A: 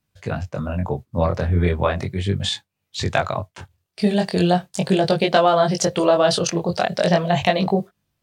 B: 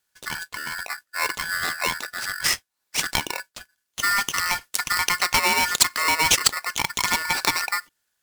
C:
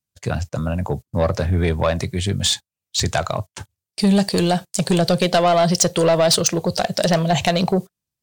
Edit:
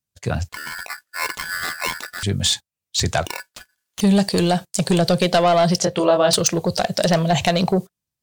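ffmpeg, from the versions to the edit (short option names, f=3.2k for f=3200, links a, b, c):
-filter_complex "[1:a]asplit=2[a][b];[2:a]asplit=4[c][d][e][f];[c]atrim=end=0.492[g];[a]atrim=start=0.488:end=2.232[h];[d]atrim=start=2.228:end=3.262[i];[b]atrim=start=3.258:end=4.012[j];[e]atrim=start=4.008:end=5.782[k];[0:a]atrim=start=5.778:end=6.332[l];[f]atrim=start=6.328[m];[g][h]acrossfade=d=0.004:c1=hsin:c2=hsin[n];[n][i]acrossfade=d=0.004:c1=hsin:c2=hsin[o];[o][j]acrossfade=d=0.004:c1=hsin:c2=hsin[p];[p][k]acrossfade=d=0.004:c1=hsin:c2=hsin[q];[q][l]acrossfade=d=0.004:c1=hsin:c2=hsin[r];[r][m]acrossfade=d=0.004:c1=hsin:c2=hsin"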